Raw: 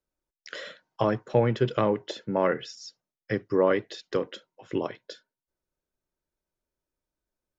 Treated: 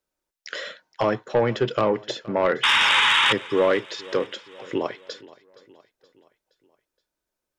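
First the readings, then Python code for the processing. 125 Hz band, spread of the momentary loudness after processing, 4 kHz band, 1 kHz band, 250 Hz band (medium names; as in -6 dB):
-2.5 dB, 19 LU, +19.0 dB, +7.5 dB, +1.0 dB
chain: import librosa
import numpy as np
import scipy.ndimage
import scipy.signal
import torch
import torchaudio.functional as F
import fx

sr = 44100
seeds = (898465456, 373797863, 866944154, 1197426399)

p1 = fx.low_shelf(x, sr, hz=230.0, db=-10.5)
p2 = fx.spec_paint(p1, sr, seeds[0], shape='noise', start_s=2.63, length_s=0.7, low_hz=810.0, high_hz=3800.0, level_db=-23.0)
p3 = fx.fold_sine(p2, sr, drive_db=8, ceiling_db=-10.5)
p4 = p2 + F.gain(torch.from_numpy(p3), -11.0).numpy()
y = fx.echo_feedback(p4, sr, ms=471, feedback_pct=51, wet_db=-21)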